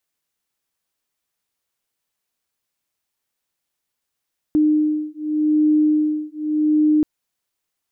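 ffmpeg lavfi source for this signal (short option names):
-f lavfi -i "aevalsrc='0.126*(sin(2*PI*304*t)+sin(2*PI*304.85*t))':d=2.48:s=44100"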